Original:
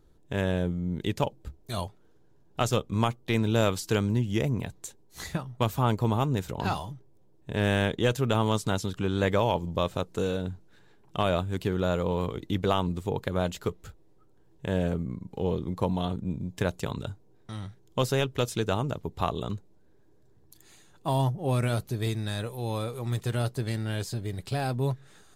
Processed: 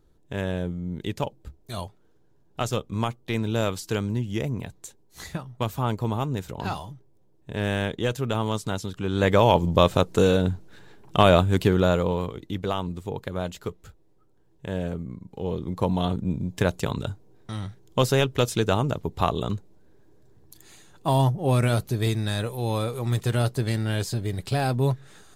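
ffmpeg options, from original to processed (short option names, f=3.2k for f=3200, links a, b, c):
-af "volume=16.5dB,afade=t=in:st=9.01:d=0.65:silence=0.298538,afade=t=out:st=11.54:d=0.79:silence=0.266073,afade=t=in:st=15.41:d=0.67:silence=0.446684"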